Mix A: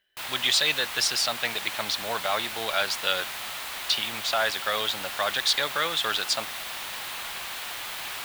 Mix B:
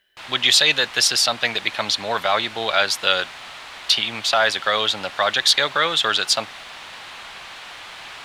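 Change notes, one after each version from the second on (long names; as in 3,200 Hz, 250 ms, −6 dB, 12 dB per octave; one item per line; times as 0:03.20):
speech +7.5 dB
background: add high-frequency loss of the air 84 metres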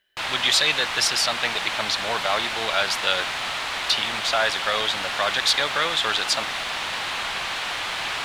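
speech −4.5 dB
background +9.5 dB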